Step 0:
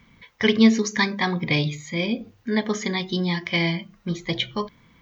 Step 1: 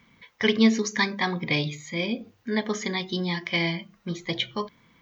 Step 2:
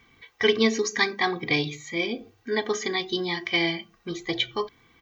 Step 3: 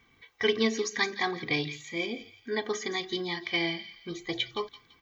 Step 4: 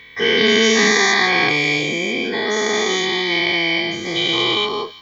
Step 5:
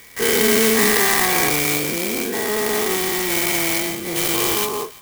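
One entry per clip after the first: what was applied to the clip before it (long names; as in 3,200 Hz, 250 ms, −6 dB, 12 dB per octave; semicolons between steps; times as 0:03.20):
low-shelf EQ 100 Hz −11 dB; level −2 dB
comb filter 2.6 ms, depth 68%
delay with a high-pass on its return 168 ms, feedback 35%, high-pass 1,900 Hz, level −12 dB; level −5 dB
every bin's largest magnitude spread in time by 480 ms; level +4.5 dB
converter with an unsteady clock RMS 0.078 ms; level −1.5 dB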